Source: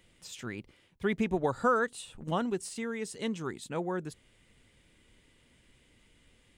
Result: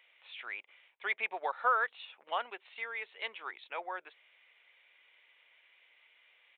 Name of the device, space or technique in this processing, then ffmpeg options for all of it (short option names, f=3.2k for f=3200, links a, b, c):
musical greeting card: -af "aresample=8000,aresample=44100,highpass=f=650:w=0.5412,highpass=f=650:w=1.3066,equalizer=f=2.3k:t=o:w=0.39:g=8.5"